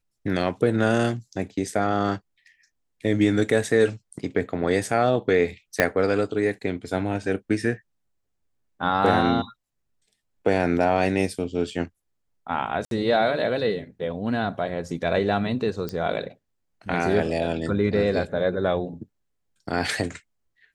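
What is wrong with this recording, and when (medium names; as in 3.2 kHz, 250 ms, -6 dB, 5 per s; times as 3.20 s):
5.80 s: pop -4 dBFS
12.85–12.91 s: dropout 62 ms
15.89 s: pop -16 dBFS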